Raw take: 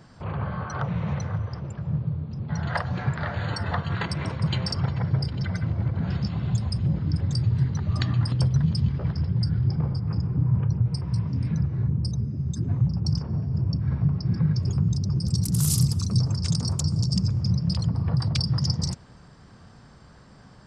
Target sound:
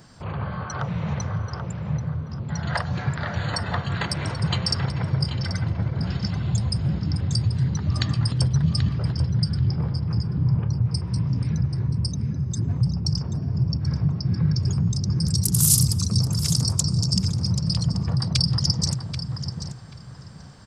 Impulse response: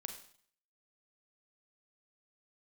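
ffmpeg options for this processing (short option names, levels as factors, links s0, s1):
-filter_complex "[0:a]highshelf=f=4500:g=11.5,asplit=2[s0][s1];[s1]adelay=784,lowpass=f=2700:p=1,volume=0.501,asplit=2[s2][s3];[s3]adelay=784,lowpass=f=2700:p=1,volume=0.25,asplit=2[s4][s5];[s5]adelay=784,lowpass=f=2700:p=1,volume=0.25[s6];[s0][s2][s4][s6]amix=inputs=4:normalize=0"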